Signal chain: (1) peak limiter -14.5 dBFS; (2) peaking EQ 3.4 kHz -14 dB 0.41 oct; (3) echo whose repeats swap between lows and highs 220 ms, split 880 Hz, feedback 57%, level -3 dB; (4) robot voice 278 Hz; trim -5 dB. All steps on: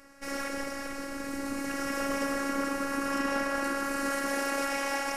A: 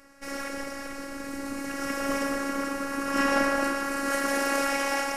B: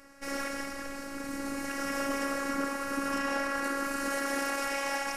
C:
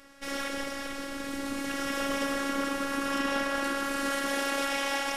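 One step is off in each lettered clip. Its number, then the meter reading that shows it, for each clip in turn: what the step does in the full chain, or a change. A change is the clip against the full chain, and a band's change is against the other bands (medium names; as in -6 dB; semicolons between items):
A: 1, mean gain reduction 1.5 dB; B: 3, loudness change -1.0 LU; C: 2, 4 kHz band +5.5 dB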